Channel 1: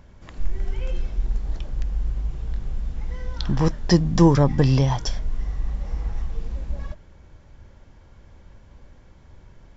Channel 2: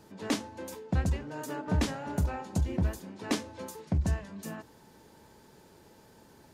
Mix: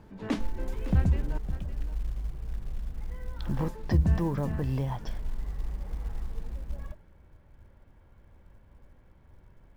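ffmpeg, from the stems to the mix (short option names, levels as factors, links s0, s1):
-filter_complex "[0:a]lowpass=2600,alimiter=limit=0.251:level=0:latency=1:release=384,acrusher=bits=8:mode=log:mix=0:aa=0.000001,volume=0.422[s0];[1:a]bass=f=250:g=7,treble=f=4000:g=-12,volume=0.794,asplit=3[s1][s2][s3];[s1]atrim=end=1.38,asetpts=PTS-STARTPTS,afade=t=out:st=1.376:d=0.004:c=hsin[s4];[s2]atrim=start=1.38:end=3.46,asetpts=PTS-STARTPTS,volume=0[s5];[s3]atrim=start=3.46,asetpts=PTS-STARTPTS,afade=t=in:d=0.004:c=hsin[s6];[s4][s5][s6]concat=n=3:v=0:a=1,asplit=2[s7][s8];[s8]volume=0.211,aecho=0:1:559:1[s9];[s0][s7][s9]amix=inputs=3:normalize=0"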